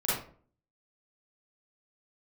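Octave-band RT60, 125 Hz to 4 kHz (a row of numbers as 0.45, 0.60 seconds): 0.60, 0.60, 0.50, 0.40, 0.35, 0.30 seconds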